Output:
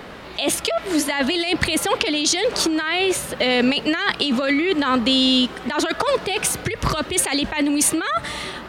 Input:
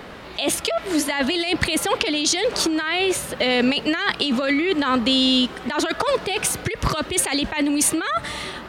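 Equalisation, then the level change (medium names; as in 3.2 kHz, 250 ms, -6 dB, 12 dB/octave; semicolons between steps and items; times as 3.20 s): hum notches 50/100 Hz; +1.0 dB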